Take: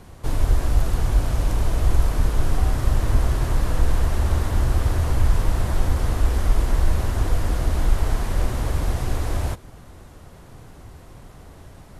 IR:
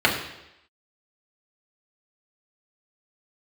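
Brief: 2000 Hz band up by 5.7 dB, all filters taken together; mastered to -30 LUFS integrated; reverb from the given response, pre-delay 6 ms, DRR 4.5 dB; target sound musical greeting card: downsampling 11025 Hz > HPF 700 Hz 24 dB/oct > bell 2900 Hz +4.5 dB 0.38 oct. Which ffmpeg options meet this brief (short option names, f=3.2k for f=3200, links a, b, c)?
-filter_complex "[0:a]equalizer=f=2k:t=o:g=6.5,asplit=2[a][b];[1:a]atrim=start_sample=2205,adelay=6[c];[b][c]afir=irnorm=-1:irlink=0,volume=-24dB[d];[a][d]amix=inputs=2:normalize=0,aresample=11025,aresample=44100,highpass=f=700:w=0.5412,highpass=f=700:w=1.3066,equalizer=f=2.9k:t=o:w=0.38:g=4.5,volume=1.5dB"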